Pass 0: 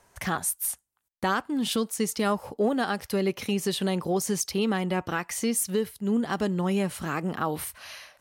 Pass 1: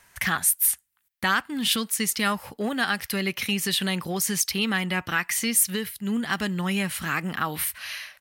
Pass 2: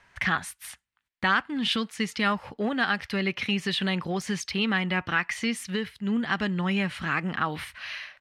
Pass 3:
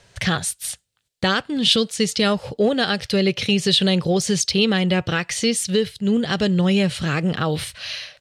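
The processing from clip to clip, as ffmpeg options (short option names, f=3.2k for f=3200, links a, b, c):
-af "firequalizer=gain_entry='entry(190,0);entry(420,-7);entry(1800,10);entry(6400,4);entry(14000,11)':delay=0.05:min_phase=1"
-af "lowpass=3.5k"
-af "equalizer=f=125:t=o:w=1:g=9,equalizer=f=250:t=o:w=1:g=-5,equalizer=f=500:t=o:w=1:g=10,equalizer=f=1k:t=o:w=1:g=-9,equalizer=f=2k:t=o:w=1:g=-8,equalizer=f=4k:t=o:w=1:g=6,equalizer=f=8k:t=o:w=1:g=8,volume=7.5dB"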